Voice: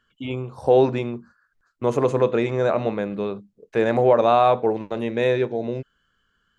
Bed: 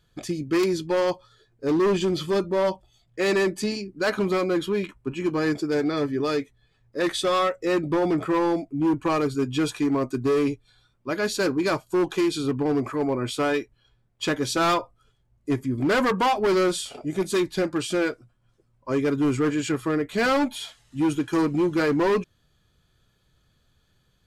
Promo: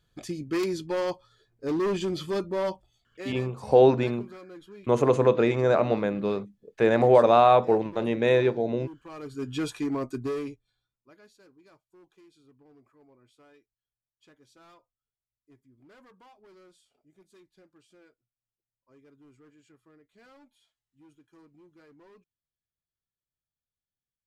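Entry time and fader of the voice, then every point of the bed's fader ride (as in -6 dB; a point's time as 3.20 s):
3.05 s, -1.0 dB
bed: 2.82 s -5.5 dB
3.53 s -22 dB
9.06 s -22 dB
9.49 s -6 dB
10.20 s -6 dB
11.39 s -34.5 dB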